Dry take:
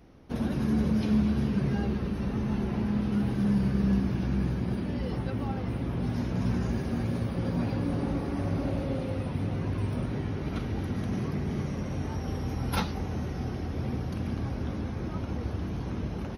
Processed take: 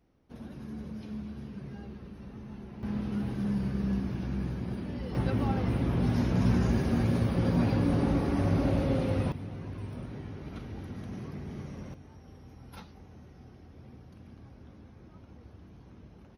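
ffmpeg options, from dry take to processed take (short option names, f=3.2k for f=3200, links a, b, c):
-af "asetnsamples=n=441:p=0,asendcmd='2.83 volume volume -5dB;5.15 volume volume 3dB;9.32 volume volume -9dB;11.94 volume volume -18.5dB',volume=-14.5dB"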